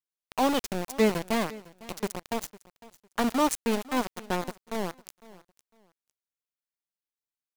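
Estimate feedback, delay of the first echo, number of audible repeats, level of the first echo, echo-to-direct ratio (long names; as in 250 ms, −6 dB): 24%, 504 ms, 2, −20.0 dB, −20.0 dB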